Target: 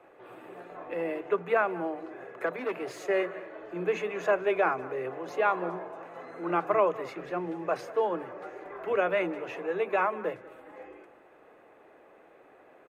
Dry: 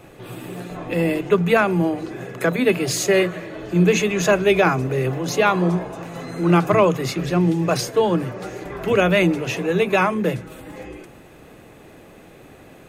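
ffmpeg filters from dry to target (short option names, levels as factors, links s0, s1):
-filter_complex "[0:a]asettb=1/sr,asplit=3[s0][s1][s2];[s0]atrim=end=2.464[s3];[s1]atrim=start=2.46:end=3.05,asetpts=PTS-STARTPTS,afade=t=in:d=0.004:c=qsin,afade=t=out:st=0.586:d=0.004:c=qsin,volume=6.68,asoftclip=hard,volume=0.15[s4];[s2]atrim=start=3.046[s5];[s3][s4]acrossfade=d=0.004:c1=hsin:c2=qsin[s6];[s6][s5]acrossfade=d=0.004:c1=qsin:c2=hsin,acrossover=split=370 2100:gain=0.0708 1 0.1[s7][s8][s9];[s7][s8][s9]amix=inputs=3:normalize=0,asplit=2[s10][s11];[s11]adelay=192.4,volume=0.126,highshelf=f=4000:g=-4.33[s12];[s10][s12]amix=inputs=2:normalize=0,volume=0.473"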